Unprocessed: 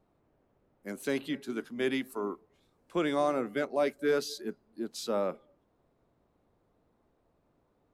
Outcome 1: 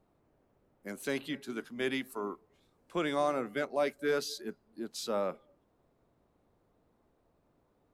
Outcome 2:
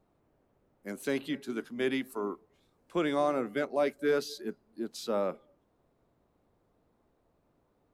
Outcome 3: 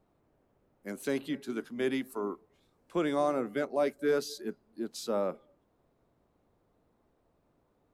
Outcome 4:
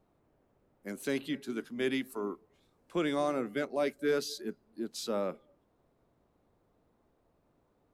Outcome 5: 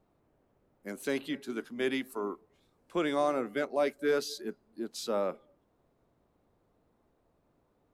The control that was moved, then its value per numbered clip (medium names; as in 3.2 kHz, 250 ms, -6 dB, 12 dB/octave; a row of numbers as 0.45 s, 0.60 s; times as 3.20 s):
dynamic bell, frequency: 310 Hz, 7.7 kHz, 2.8 kHz, 840 Hz, 120 Hz